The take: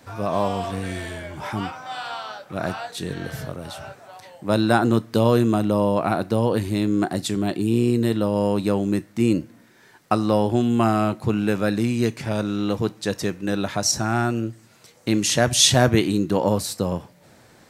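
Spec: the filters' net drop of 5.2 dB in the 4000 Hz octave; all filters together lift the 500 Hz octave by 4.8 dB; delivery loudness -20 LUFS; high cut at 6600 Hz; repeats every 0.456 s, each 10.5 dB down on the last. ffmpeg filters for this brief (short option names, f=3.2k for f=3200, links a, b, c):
-af "lowpass=6.6k,equalizer=f=500:t=o:g=6,equalizer=f=4k:t=o:g=-6,aecho=1:1:456|912|1368:0.299|0.0896|0.0269"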